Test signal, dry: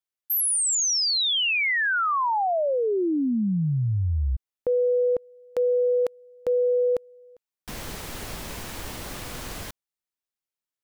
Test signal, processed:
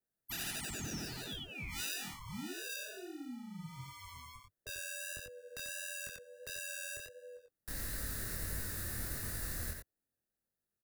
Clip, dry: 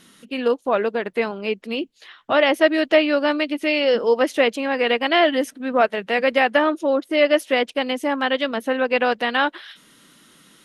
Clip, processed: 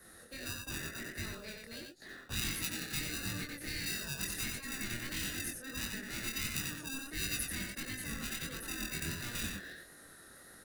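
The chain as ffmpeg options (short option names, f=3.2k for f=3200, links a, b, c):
-filter_complex "[0:a]firequalizer=gain_entry='entry(100,0);entry(200,-19);entry(330,-17);entry(520,3);entry(790,-5);entry(1800,9);entry(2700,-24);entry(3900,0);entry(6100,-2);entry(10000,7)':delay=0.05:min_phase=1,asplit=2[a][b];[b]acrusher=samples=41:mix=1:aa=0.000001,volume=-5dB[c];[a][c]amix=inputs=2:normalize=0,afftfilt=real='re*lt(hypot(re,im),0.316)':imag='im*lt(hypot(re,im),0.316)':win_size=1024:overlap=0.75,acrossover=split=290|1600[d][e][f];[e]acompressor=threshold=-44dB:ratio=10:attack=0.29:release=258:knee=1:detection=peak[g];[d][g][f]amix=inputs=3:normalize=0,adynamicequalizer=threshold=0.00562:dfrequency=4100:dqfactor=1.6:tfrequency=4100:tqfactor=1.6:attack=5:release=100:ratio=0.438:range=2:mode=cutabove:tftype=bell,aecho=1:1:91:0.562,flanger=delay=20:depth=5.8:speed=1.5,acrossover=split=480|2500[h][i][j];[i]acompressor=threshold=-47dB:ratio=2.5:attack=3.2:release=36:knee=2.83:detection=peak[k];[h][k][j]amix=inputs=3:normalize=0,volume=-4dB"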